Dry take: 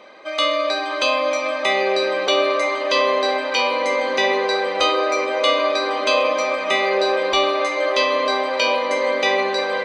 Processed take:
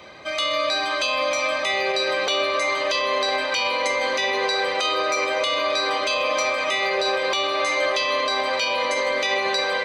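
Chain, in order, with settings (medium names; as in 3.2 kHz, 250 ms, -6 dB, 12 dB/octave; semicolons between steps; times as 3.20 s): tilt EQ +2.5 dB/octave; peak limiter -13.5 dBFS, peak gain reduction 10.5 dB; band noise 53–720 Hz -51 dBFS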